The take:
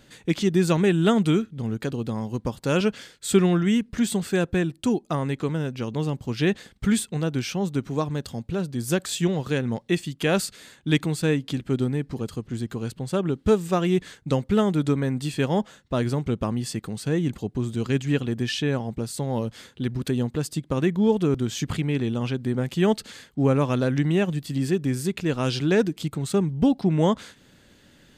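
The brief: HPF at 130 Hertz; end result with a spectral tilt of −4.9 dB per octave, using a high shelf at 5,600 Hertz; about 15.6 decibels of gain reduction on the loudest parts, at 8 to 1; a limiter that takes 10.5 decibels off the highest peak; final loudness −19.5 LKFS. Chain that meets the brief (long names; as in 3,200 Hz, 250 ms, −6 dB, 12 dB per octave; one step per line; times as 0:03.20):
high-pass filter 130 Hz
high-shelf EQ 5,600 Hz +5 dB
downward compressor 8 to 1, threshold −31 dBFS
level +20 dB
brickwall limiter −9.5 dBFS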